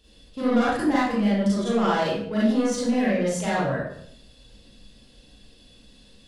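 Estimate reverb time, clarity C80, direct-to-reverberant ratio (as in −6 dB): 0.65 s, 3.5 dB, −9.0 dB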